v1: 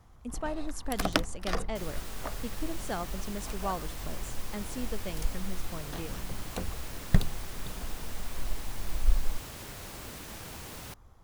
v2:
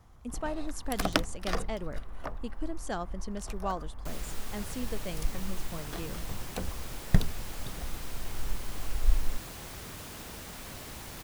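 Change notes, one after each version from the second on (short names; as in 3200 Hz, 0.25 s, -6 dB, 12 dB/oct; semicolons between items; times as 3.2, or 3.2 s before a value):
second sound: entry +2.30 s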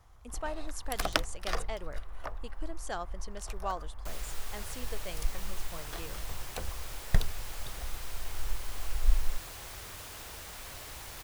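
master: add bell 210 Hz -12.5 dB 1.5 oct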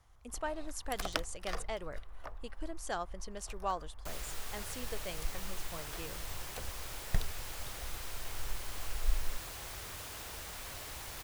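first sound -6.5 dB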